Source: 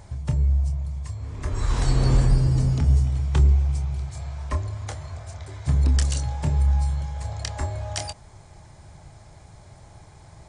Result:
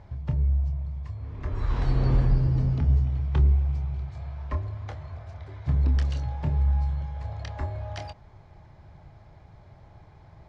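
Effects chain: distance through air 260 m; trim -3 dB

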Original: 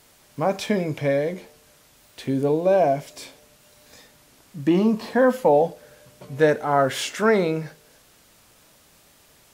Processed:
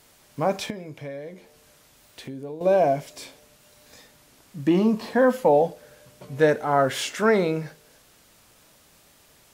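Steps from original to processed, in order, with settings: 0.70–2.61 s: compression 2.5:1, threshold -39 dBFS, peak gain reduction 14.5 dB; trim -1 dB

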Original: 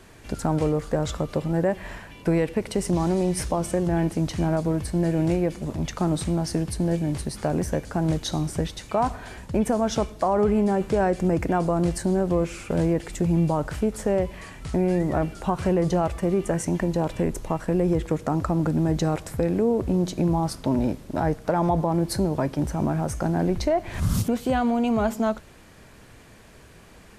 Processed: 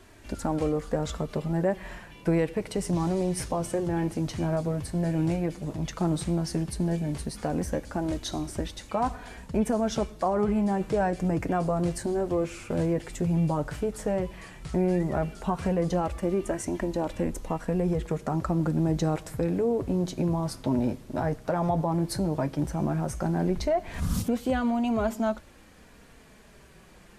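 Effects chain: flange 0.12 Hz, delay 2.9 ms, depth 5.6 ms, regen -38%

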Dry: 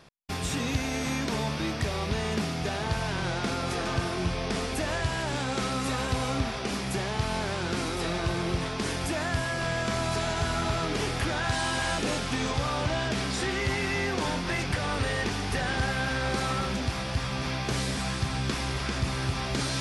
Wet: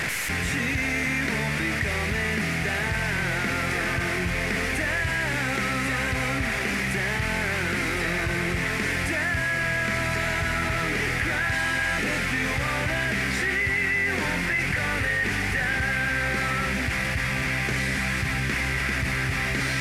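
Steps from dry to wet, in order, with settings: one-bit delta coder 64 kbps, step -29.5 dBFS; FFT filter 180 Hz 0 dB, 1.1 kHz -4 dB, 2 kHz +13 dB, 3.4 kHz -4 dB; level flattener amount 70%; trim -4 dB

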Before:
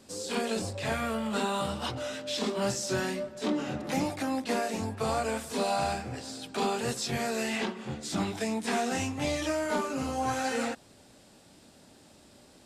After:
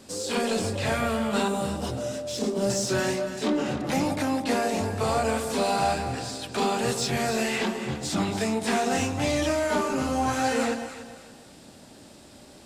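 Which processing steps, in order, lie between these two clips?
in parallel at -5.5 dB: saturation -35 dBFS, distortion -7 dB; 1.48–2.70 s: on the sum: high-order bell 1.9 kHz -10 dB 2.6 oct; echo whose repeats swap between lows and highs 142 ms, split 910 Hz, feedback 56%, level -6 dB; trim +2.5 dB

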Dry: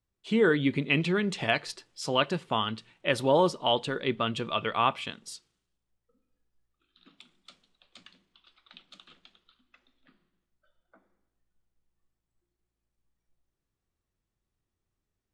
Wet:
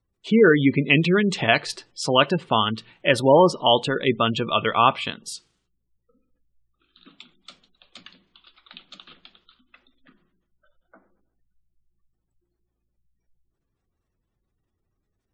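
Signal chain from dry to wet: spectral gate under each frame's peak -25 dB strong; trim +8 dB

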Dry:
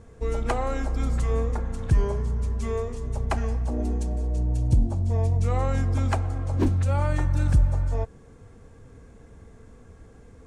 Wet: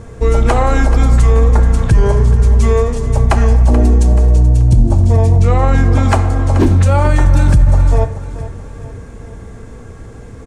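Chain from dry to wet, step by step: 5.31–6.03 s: treble shelf 6.6 kHz -10 dB; feedback delay 431 ms, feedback 44%, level -15 dB; on a send at -11 dB: reverberation, pre-delay 4 ms; on the sum: loudness maximiser +16.5 dB; trim -1 dB

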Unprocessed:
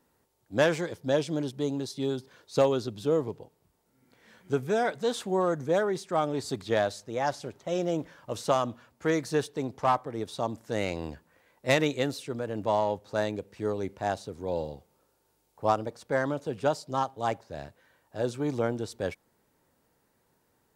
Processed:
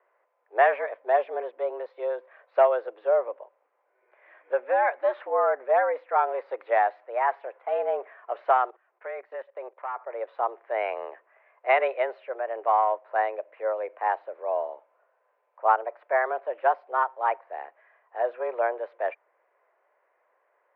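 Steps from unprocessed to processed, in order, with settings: 8.65–10.10 s: level held to a coarse grid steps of 18 dB; mistuned SSB +120 Hz 370–2200 Hz; trim +4.5 dB

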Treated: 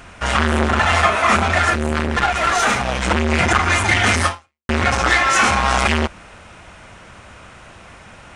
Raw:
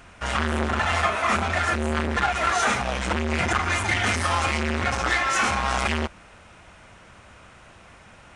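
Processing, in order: 1.70–3.03 s: valve stage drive 14 dB, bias 0.45; 4.27–4.69 s: fade out exponential; trim +7.5 dB

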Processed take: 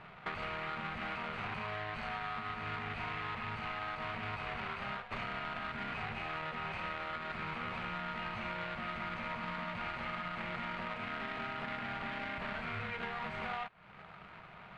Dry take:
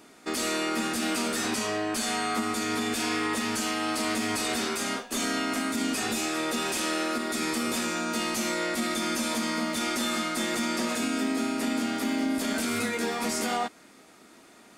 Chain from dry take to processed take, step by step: median filter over 25 samples; FFT filter 170 Hz 0 dB, 270 Hz -28 dB, 410 Hz -16 dB, 940 Hz -2 dB, 2.1 kHz +8 dB, 4 kHz -3 dB, 5.9 kHz -16 dB; compression, threshold -48 dBFS, peak gain reduction 17 dB; distance through air 68 m; trim +11 dB

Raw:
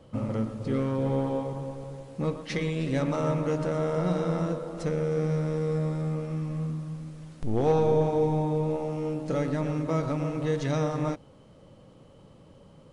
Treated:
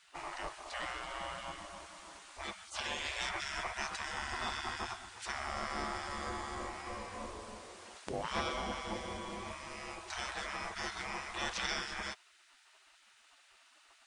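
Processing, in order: spectral gate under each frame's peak -25 dB weak; speed mistake 48 kHz file played as 44.1 kHz; trim +7 dB

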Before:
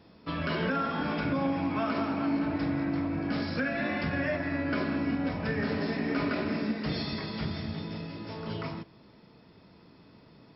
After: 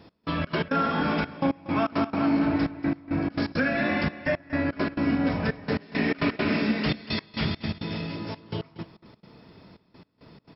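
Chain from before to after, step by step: 5.79–8.16 s: dynamic bell 2.8 kHz, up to +7 dB, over -53 dBFS, Q 1.1; trance gate "x..xx.x.xxxxxx.." 169 bpm -24 dB; delay 236 ms -16 dB; trim +5.5 dB

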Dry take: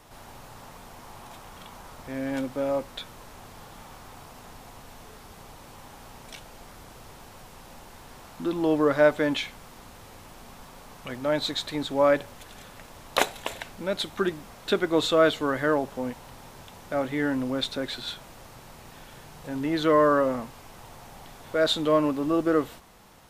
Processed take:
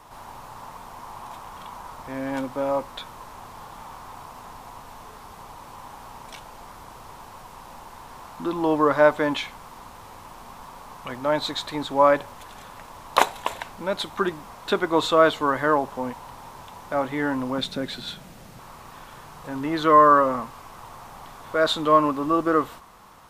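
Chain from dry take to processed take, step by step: peaking EQ 1 kHz +11 dB 0.71 oct, from 17.58 s 180 Hz, from 18.59 s 1.1 kHz

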